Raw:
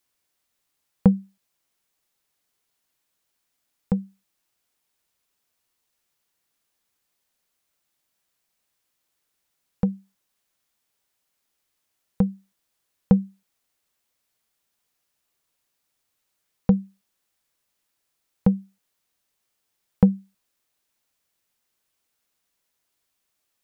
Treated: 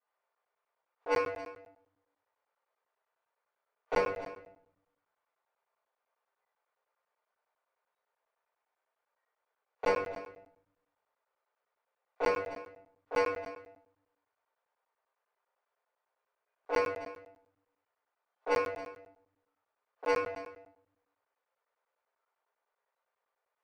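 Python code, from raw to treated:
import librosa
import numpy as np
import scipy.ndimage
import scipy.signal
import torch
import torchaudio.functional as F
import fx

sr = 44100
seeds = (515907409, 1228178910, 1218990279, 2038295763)

y = fx.cycle_switch(x, sr, every=2, mode='inverted')
y = scipy.signal.sosfilt(scipy.signal.butter(6, 480.0, 'highpass', fs=sr, output='sos'), y)
y = fx.noise_reduce_blind(y, sr, reduce_db=14)
y = scipy.signal.sosfilt(scipy.signal.butter(2, 1100.0, 'lowpass', fs=sr, output='sos'), y)
y = fx.over_compress(y, sr, threshold_db=-33.0, ratio=-0.5)
y = 10.0 ** (-35.0 / 20.0) * np.tanh(y / 10.0 ** (-35.0 / 20.0))
y = y + 10.0 ** (-14.5 / 20.0) * np.pad(y, (int(269 * sr / 1000.0), 0))[:len(y)]
y = fx.room_shoebox(y, sr, seeds[0], volume_m3=110.0, walls='mixed', distance_m=3.5)
y = fx.buffer_crackle(y, sr, first_s=0.35, period_s=0.1, block=512, kind='zero')
y = F.gain(torch.from_numpy(y), 2.0).numpy()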